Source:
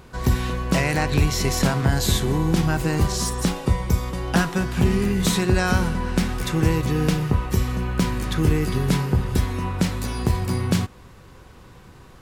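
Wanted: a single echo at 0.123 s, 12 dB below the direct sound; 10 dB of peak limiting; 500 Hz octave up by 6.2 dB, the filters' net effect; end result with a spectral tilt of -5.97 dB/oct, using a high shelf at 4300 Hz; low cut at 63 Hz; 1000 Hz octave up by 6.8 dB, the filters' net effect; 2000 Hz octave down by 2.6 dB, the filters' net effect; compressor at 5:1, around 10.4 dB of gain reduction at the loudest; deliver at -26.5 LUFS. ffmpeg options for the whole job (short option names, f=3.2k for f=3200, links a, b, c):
-af "highpass=63,equalizer=f=500:t=o:g=6.5,equalizer=f=1k:t=o:g=8,equalizer=f=2k:t=o:g=-7,highshelf=f=4.3k:g=-3.5,acompressor=threshold=-26dB:ratio=5,alimiter=limit=-22dB:level=0:latency=1,aecho=1:1:123:0.251,volume=5dB"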